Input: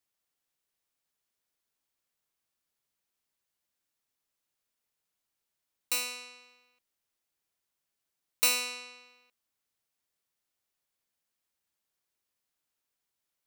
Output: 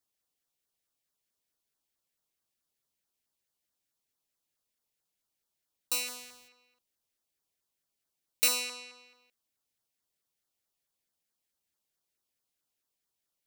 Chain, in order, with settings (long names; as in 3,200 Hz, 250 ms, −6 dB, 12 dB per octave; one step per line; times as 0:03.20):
0:06.06–0:06.47: compressing power law on the bin magnitudes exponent 0.44
auto-filter notch saw down 4.6 Hz 820–2,900 Hz